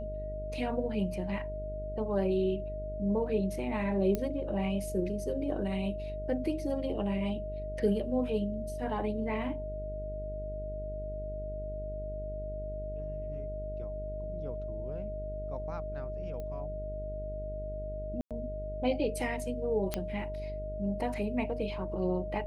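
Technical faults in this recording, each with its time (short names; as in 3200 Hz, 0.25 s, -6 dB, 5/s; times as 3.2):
buzz 50 Hz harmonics 11 -40 dBFS
tone 620 Hz -38 dBFS
4.15 pop -18 dBFS
16.4 pop -29 dBFS
18.21–18.31 gap 97 ms
19.94 pop -15 dBFS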